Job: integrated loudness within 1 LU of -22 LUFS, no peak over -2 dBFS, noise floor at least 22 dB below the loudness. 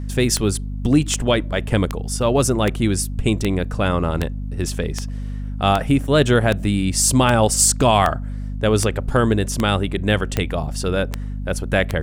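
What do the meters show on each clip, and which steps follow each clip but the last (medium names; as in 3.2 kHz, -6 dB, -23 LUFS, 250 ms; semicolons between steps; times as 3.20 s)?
clicks found 16; hum 50 Hz; highest harmonic 250 Hz; hum level -24 dBFS; loudness -19.5 LUFS; peak level -2.0 dBFS; loudness target -22.0 LUFS
-> de-click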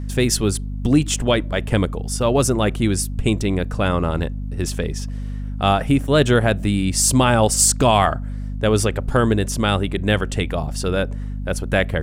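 clicks found 0; hum 50 Hz; highest harmonic 250 Hz; hum level -24 dBFS
-> hum notches 50/100/150/200/250 Hz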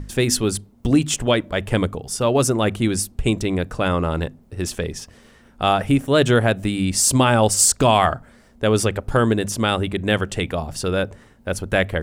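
hum not found; loudness -20.0 LUFS; peak level -2.5 dBFS; loudness target -22.0 LUFS
-> trim -2 dB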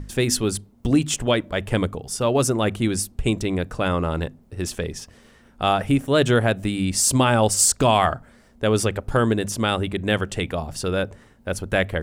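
loudness -22.0 LUFS; peak level -4.5 dBFS; noise floor -53 dBFS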